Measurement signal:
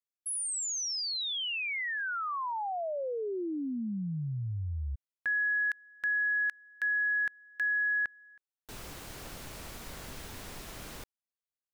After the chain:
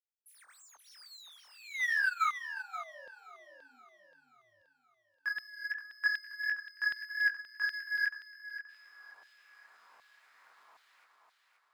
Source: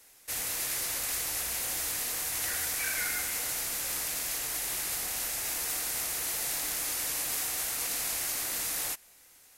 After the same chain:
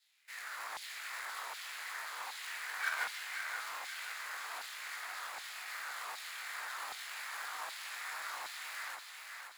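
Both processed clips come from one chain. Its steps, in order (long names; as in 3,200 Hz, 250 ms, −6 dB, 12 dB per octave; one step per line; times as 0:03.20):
running median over 15 samples
high-shelf EQ 5,300 Hz −3 dB
hum removal 67.31 Hz, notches 26
chorus effect 2.9 Hz, delay 19.5 ms, depth 2.8 ms
auto-filter high-pass saw down 1.3 Hz 880–3,700 Hz
on a send: feedback echo with a high-pass in the loop 527 ms, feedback 50%, high-pass 260 Hz, level −4.5 dB
on the sum: expander for the loud parts 2.5 to 1, over −41 dBFS
level +6.5 dB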